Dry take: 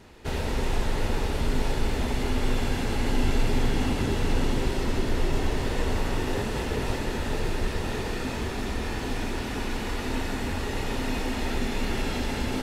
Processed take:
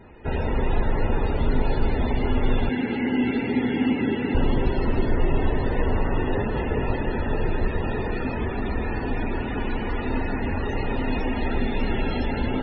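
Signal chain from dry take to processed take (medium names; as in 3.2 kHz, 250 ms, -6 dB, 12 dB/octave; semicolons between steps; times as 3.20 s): loudest bins only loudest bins 64; 2.69–4.35 s: cabinet simulation 190–3900 Hz, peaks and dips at 250 Hz +7 dB, 630 Hz -9 dB, 1.1 kHz -9 dB, 2.1 kHz +6 dB; trim +4 dB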